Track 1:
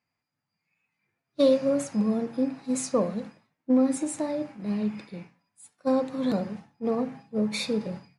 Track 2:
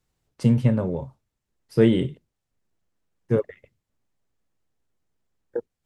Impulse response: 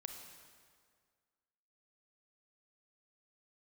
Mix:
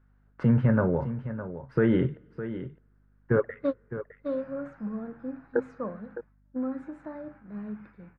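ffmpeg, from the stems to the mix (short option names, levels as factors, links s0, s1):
-filter_complex "[0:a]lowshelf=f=200:g=7.5,adelay=2250,volume=0.422,asplit=2[s0][s1];[s1]volume=0.531[s2];[1:a]alimiter=limit=0.168:level=0:latency=1,volume=1.06,asplit=4[s3][s4][s5][s6];[s4]volume=0.112[s7];[s5]volume=0.266[s8];[s6]apad=whole_len=460231[s9];[s0][s9]sidechaingate=range=0.002:threshold=0.002:ratio=16:detection=peak[s10];[2:a]atrim=start_sample=2205[s11];[s7][s11]afir=irnorm=-1:irlink=0[s12];[s2][s8]amix=inputs=2:normalize=0,aecho=0:1:610:1[s13];[s10][s3][s12][s13]amix=inputs=4:normalize=0,lowpass=f=1500:t=q:w=4.5,aeval=exprs='val(0)+0.000794*(sin(2*PI*50*n/s)+sin(2*PI*2*50*n/s)/2+sin(2*PI*3*50*n/s)/3+sin(2*PI*4*50*n/s)/4+sin(2*PI*5*50*n/s)/5)':c=same"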